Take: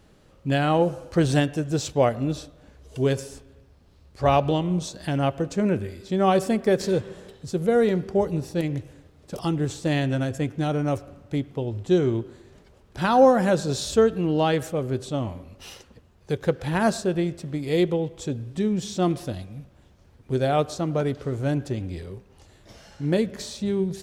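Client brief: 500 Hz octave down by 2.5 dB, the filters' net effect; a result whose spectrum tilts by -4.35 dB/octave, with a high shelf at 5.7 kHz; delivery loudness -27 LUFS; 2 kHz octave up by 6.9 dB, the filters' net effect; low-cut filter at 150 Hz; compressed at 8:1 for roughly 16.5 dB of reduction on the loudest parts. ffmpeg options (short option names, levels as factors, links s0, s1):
-af "highpass=150,equalizer=f=500:t=o:g=-3.5,equalizer=f=2000:t=o:g=8.5,highshelf=f=5700:g=7.5,acompressor=threshold=0.0251:ratio=8,volume=3.16"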